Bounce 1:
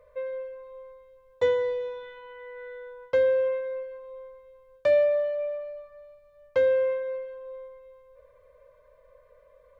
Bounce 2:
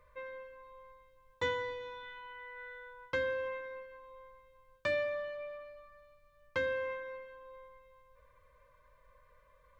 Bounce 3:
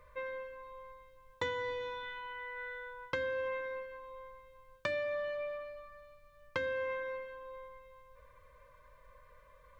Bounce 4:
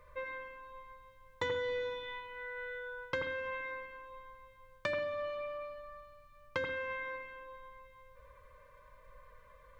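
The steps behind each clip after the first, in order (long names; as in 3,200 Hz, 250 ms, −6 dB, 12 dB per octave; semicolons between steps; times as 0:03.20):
flat-topped bell 570 Hz −13.5 dB 1.1 octaves
downward compressor 6 to 1, threshold −37 dBFS, peak gain reduction 8.5 dB; level +4.5 dB
convolution reverb, pre-delay 81 ms, DRR 4 dB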